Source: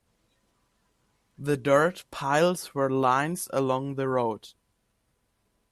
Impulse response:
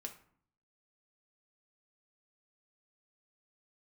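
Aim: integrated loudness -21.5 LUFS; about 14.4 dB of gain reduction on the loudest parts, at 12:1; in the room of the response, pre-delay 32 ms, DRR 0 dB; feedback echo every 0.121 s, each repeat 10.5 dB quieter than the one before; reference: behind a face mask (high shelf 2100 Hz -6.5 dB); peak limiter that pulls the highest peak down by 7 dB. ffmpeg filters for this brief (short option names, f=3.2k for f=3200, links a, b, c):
-filter_complex "[0:a]acompressor=threshold=-31dB:ratio=12,alimiter=level_in=4.5dB:limit=-24dB:level=0:latency=1,volume=-4.5dB,aecho=1:1:121|242|363:0.299|0.0896|0.0269,asplit=2[a][b];[1:a]atrim=start_sample=2205,adelay=32[c];[b][c]afir=irnorm=-1:irlink=0,volume=3.5dB[d];[a][d]amix=inputs=2:normalize=0,highshelf=f=2.1k:g=-6.5,volume=14.5dB"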